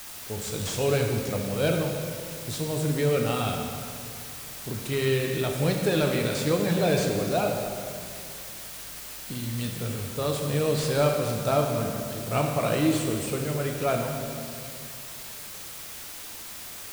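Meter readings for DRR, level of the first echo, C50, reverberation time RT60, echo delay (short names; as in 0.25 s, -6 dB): 1.5 dB, none, 3.5 dB, 2.3 s, none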